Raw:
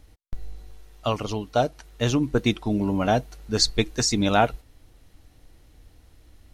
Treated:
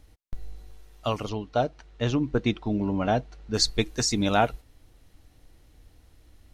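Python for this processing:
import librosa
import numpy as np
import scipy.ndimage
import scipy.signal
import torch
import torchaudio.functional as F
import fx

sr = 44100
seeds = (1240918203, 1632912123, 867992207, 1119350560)

y = fx.air_absorb(x, sr, metres=120.0, at=(1.29, 3.54))
y = y * librosa.db_to_amplitude(-2.5)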